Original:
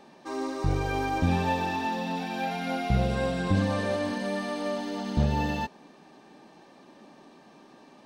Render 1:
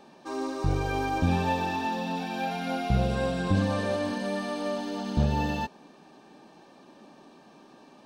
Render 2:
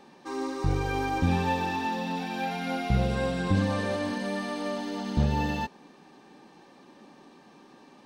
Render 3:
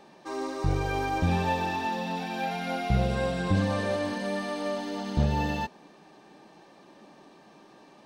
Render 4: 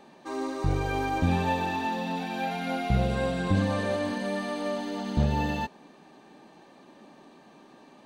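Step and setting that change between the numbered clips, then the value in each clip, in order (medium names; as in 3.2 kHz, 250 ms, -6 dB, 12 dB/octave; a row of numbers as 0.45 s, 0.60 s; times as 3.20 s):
band-stop, frequency: 2 kHz, 640 Hz, 250 Hz, 5.3 kHz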